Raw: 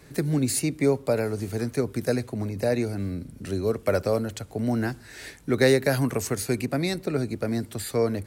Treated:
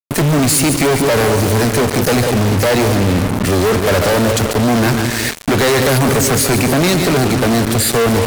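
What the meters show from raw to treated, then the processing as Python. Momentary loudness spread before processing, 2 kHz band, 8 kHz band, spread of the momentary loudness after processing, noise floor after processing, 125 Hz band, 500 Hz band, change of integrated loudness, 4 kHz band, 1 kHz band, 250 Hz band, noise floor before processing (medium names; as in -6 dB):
9 LU, +15.0 dB, +16.5 dB, 3 LU, -20 dBFS, +13.5 dB, +10.5 dB, +13.0 dB, +17.5 dB, +18.5 dB, +12.0 dB, -48 dBFS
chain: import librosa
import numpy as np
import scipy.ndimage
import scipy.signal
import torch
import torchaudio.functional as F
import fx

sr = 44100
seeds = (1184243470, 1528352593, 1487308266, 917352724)

y = fx.echo_split(x, sr, split_hz=600.0, low_ms=185, high_ms=142, feedback_pct=52, wet_db=-12.5)
y = fx.fuzz(y, sr, gain_db=48.0, gate_db=-39.0)
y = y * 10.0 ** (2.0 / 20.0)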